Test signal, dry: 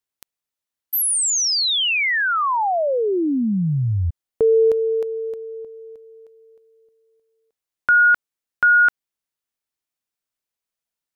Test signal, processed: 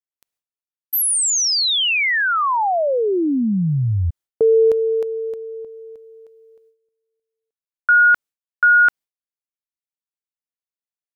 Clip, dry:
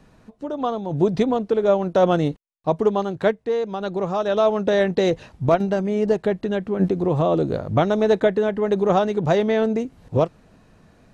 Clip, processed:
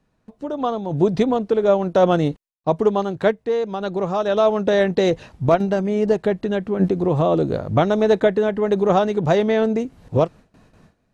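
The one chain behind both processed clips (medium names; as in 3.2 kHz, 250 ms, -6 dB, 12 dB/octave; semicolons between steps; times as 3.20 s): gate with hold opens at -41 dBFS, closes at -48 dBFS, hold 102 ms, range -16 dB; trim +1.5 dB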